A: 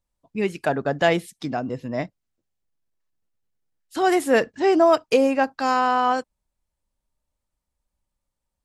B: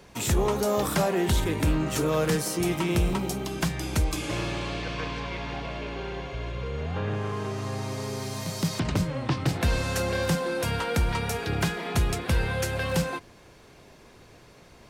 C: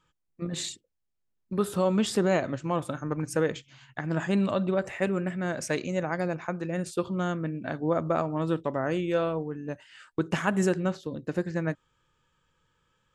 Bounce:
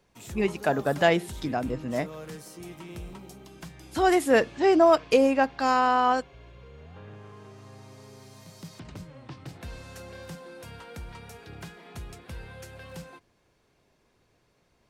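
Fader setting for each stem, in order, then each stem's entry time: -2.0 dB, -16.0 dB, mute; 0.00 s, 0.00 s, mute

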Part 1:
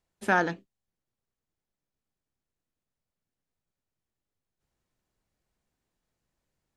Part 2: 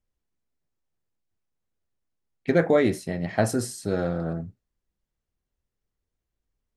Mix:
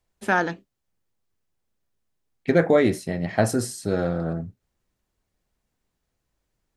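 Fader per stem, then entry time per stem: +2.5 dB, +2.0 dB; 0.00 s, 0.00 s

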